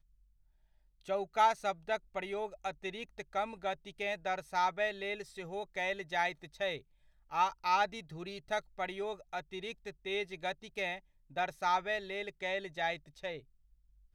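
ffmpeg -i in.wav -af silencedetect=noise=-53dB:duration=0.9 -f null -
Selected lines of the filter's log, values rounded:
silence_start: 0.00
silence_end: 1.01 | silence_duration: 1.01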